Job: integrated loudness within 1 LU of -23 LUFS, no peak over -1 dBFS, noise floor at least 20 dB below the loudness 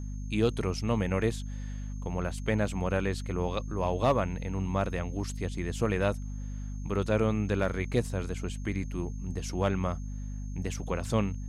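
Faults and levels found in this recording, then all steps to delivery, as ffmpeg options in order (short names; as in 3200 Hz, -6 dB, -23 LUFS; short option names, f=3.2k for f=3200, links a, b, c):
hum 50 Hz; harmonics up to 250 Hz; hum level -34 dBFS; steady tone 6400 Hz; tone level -57 dBFS; loudness -31.5 LUFS; peak -15.0 dBFS; loudness target -23.0 LUFS
-> -af "bandreject=f=50:t=h:w=4,bandreject=f=100:t=h:w=4,bandreject=f=150:t=h:w=4,bandreject=f=200:t=h:w=4,bandreject=f=250:t=h:w=4"
-af "bandreject=f=6.4k:w=30"
-af "volume=8.5dB"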